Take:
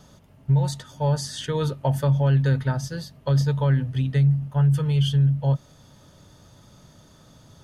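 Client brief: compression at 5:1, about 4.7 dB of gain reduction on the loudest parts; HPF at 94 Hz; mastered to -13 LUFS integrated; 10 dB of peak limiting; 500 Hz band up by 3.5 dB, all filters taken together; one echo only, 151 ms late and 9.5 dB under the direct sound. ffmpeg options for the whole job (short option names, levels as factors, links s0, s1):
-af "highpass=94,equalizer=f=500:t=o:g=4,acompressor=threshold=0.0891:ratio=5,alimiter=limit=0.0794:level=0:latency=1,aecho=1:1:151:0.335,volume=6.31"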